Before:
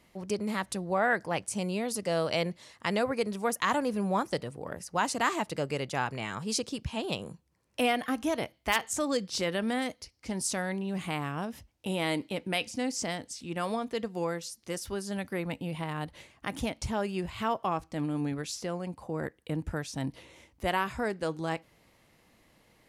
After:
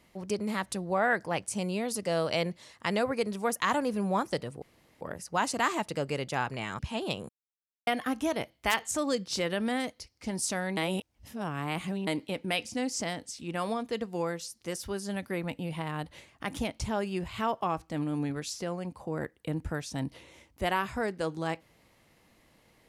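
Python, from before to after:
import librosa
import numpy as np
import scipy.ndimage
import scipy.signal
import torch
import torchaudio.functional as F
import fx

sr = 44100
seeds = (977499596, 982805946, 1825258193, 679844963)

y = fx.edit(x, sr, fx.insert_room_tone(at_s=4.62, length_s=0.39),
    fx.cut(start_s=6.4, length_s=0.41),
    fx.silence(start_s=7.31, length_s=0.58),
    fx.reverse_span(start_s=10.79, length_s=1.3), tone=tone)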